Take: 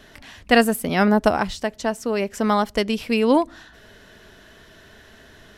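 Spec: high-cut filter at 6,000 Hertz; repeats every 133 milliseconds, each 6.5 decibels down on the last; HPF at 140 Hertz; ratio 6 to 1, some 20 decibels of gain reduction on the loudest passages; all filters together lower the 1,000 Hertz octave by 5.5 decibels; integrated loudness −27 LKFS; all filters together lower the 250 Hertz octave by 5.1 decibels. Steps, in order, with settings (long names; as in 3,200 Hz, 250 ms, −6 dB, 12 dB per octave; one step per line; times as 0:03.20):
high-pass filter 140 Hz
low-pass filter 6,000 Hz
parametric band 250 Hz −5 dB
parametric band 1,000 Hz −7.5 dB
downward compressor 6 to 1, threshold −36 dBFS
repeating echo 133 ms, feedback 47%, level −6.5 dB
level +13 dB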